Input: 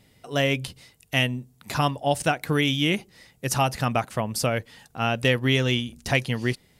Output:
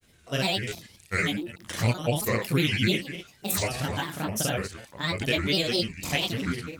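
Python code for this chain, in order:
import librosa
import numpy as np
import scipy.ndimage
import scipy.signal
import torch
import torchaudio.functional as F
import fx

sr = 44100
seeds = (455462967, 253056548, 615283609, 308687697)

p1 = fx.reverse_delay(x, sr, ms=137, wet_db=-11)
p2 = fx.high_shelf(p1, sr, hz=5800.0, db=6.5)
p3 = p2 + fx.room_early_taps(p2, sr, ms=(28, 41, 68), db=(-3.5, -4.5, -5.5), dry=0)
p4 = fx.granulator(p3, sr, seeds[0], grain_ms=100.0, per_s=20.0, spray_ms=37.0, spread_st=7)
p5 = fx.dynamic_eq(p4, sr, hz=910.0, q=1.3, threshold_db=-37.0, ratio=4.0, max_db=-7)
y = p5 * librosa.db_to_amplitude(-4.0)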